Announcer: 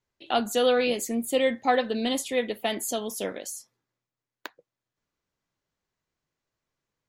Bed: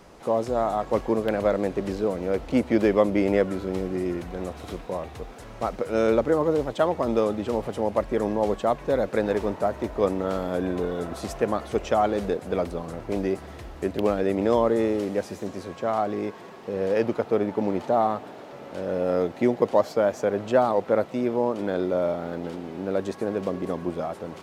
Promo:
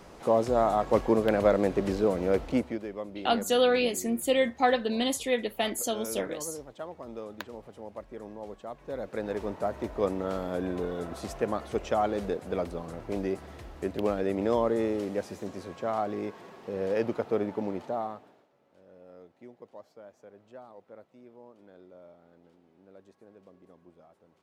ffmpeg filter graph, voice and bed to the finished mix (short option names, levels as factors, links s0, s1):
-filter_complex "[0:a]adelay=2950,volume=0.891[s0];[1:a]volume=4.22,afade=t=out:st=2.35:d=0.45:silence=0.133352,afade=t=in:st=8.7:d=1.08:silence=0.237137,afade=t=out:st=17.4:d=1.09:silence=0.0749894[s1];[s0][s1]amix=inputs=2:normalize=0"